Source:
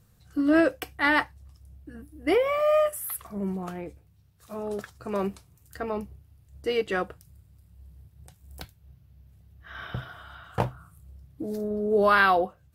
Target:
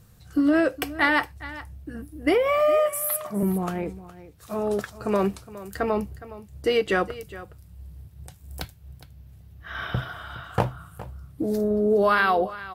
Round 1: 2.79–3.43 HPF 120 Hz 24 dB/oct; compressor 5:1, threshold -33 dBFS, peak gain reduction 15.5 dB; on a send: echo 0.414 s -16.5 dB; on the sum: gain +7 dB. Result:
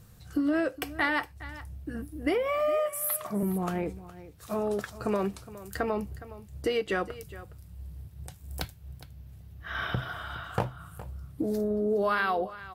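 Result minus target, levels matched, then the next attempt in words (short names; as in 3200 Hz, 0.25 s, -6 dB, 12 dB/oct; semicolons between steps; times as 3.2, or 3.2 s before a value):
compressor: peak gain reduction +7 dB
2.79–3.43 HPF 120 Hz 24 dB/oct; compressor 5:1, threshold -24.5 dBFS, peak gain reduction 9 dB; on a send: echo 0.414 s -16.5 dB; on the sum: gain +7 dB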